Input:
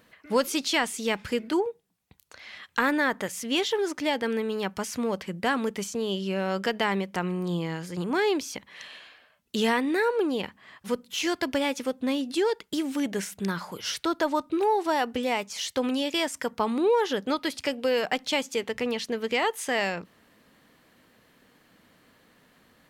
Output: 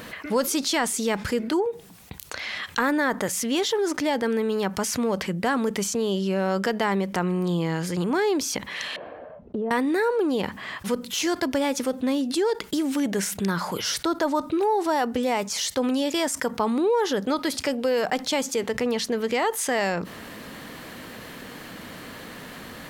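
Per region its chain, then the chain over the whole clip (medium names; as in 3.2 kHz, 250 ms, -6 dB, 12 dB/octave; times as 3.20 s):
8.96–9.71 s: resonant low-pass 580 Hz, resonance Q 2 + compression 4:1, threshold -34 dBFS
whole clip: dynamic bell 2.7 kHz, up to -7 dB, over -44 dBFS, Q 1.4; level flattener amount 50%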